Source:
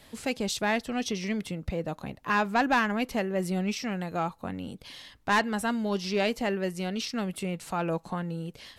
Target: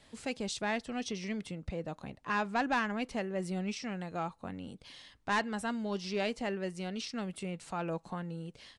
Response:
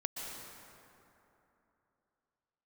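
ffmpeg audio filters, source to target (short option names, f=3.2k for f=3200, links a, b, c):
-af "aresample=22050,aresample=44100,volume=-6.5dB"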